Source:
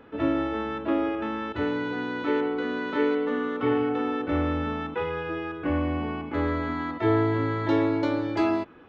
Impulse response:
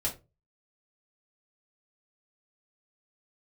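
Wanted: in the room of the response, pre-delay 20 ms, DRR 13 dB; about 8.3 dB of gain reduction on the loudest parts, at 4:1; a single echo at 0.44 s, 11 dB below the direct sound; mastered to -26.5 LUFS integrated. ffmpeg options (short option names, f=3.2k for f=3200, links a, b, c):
-filter_complex "[0:a]acompressor=threshold=-29dB:ratio=4,aecho=1:1:440:0.282,asplit=2[a][b];[1:a]atrim=start_sample=2205,adelay=20[c];[b][c]afir=irnorm=-1:irlink=0,volume=-17.5dB[d];[a][d]amix=inputs=2:normalize=0,volume=5dB"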